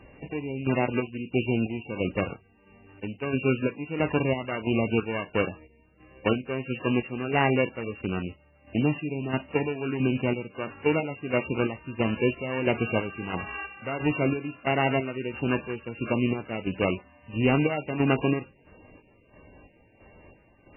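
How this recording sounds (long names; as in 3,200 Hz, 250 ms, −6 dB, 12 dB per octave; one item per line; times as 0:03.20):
a buzz of ramps at a fixed pitch in blocks of 16 samples
chopped level 1.5 Hz, depth 60%, duty 50%
MP3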